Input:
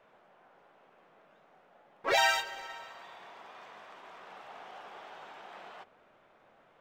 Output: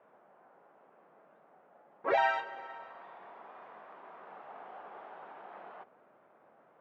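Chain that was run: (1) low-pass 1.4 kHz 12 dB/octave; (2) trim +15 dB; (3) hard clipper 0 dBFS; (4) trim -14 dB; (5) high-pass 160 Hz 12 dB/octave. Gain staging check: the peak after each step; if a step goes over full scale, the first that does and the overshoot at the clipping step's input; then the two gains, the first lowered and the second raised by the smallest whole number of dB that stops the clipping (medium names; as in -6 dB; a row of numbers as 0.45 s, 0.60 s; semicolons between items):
-17.0 dBFS, -2.0 dBFS, -2.0 dBFS, -16.0 dBFS, -16.0 dBFS; nothing clips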